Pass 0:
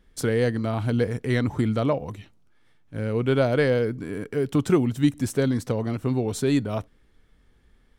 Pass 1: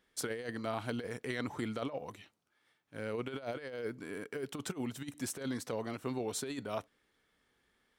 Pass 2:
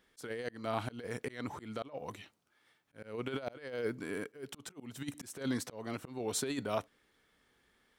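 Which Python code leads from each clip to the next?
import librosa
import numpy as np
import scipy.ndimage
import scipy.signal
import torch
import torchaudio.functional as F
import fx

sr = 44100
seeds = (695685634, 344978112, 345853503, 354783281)

y1 = fx.highpass(x, sr, hz=640.0, slope=6)
y1 = fx.over_compress(y1, sr, threshold_db=-30.0, ratio=-0.5)
y1 = y1 * 10.0 ** (-6.5 / 20.0)
y2 = fx.auto_swell(y1, sr, attack_ms=289.0)
y2 = y2 * 10.0 ** (3.5 / 20.0)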